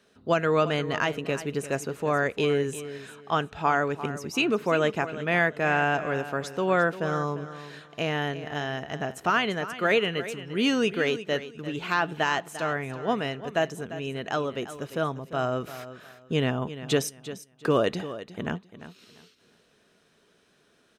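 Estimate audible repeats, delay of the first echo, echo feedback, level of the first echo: 2, 0.347 s, 24%, -13.5 dB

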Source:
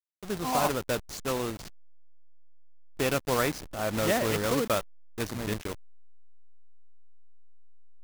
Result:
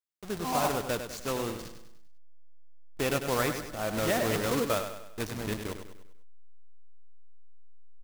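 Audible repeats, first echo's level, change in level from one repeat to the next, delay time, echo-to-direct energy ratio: 4, -8.5 dB, -6.5 dB, 99 ms, -7.5 dB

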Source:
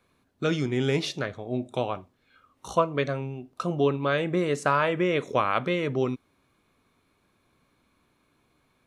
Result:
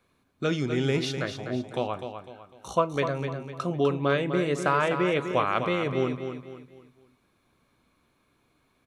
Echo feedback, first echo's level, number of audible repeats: 37%, -8.0 dB, 4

